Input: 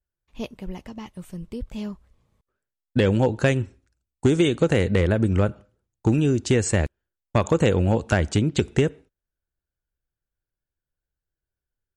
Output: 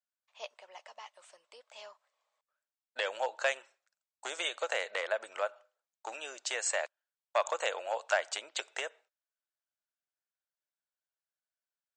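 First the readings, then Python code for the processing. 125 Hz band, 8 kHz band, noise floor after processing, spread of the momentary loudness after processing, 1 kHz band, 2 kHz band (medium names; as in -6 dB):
under -40 dB, -5.0 dB, under -85 dBFS, 19 LU, -4.5 dB, -4.5 dB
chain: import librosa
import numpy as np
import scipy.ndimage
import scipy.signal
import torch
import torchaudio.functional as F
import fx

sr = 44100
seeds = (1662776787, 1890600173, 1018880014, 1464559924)

y = scipy.signal.sosfilt(scipy.signal.cheby1(4, 1.0, [600.0, 8200.0], 'bandpass', fs=sr, output='sos'), x)
y = F.gain(torch.from_numpy(y), -4.0).numpy()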